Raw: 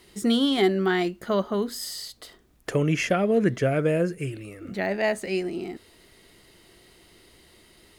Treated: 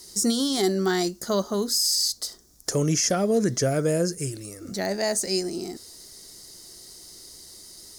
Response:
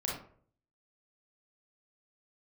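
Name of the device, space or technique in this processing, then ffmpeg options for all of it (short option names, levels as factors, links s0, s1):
over-bright horn tweeter: -af "highshelf=f=3900:t=q:w=3:g=13,alimiter=limit=0.2:level=0:latency=1:release=19"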